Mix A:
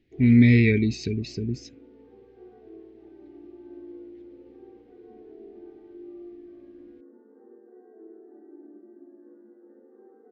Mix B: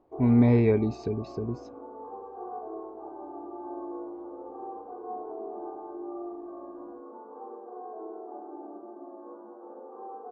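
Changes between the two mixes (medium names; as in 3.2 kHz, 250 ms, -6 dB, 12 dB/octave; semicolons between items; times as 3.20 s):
speech -5.0 dB; master: remove FFT filter 220 Hz 0 dB, 390 Hz -5 dB, 650 Hz -21 dB, 1.1 kHz -29 dB, 1.9 kHz +10 dB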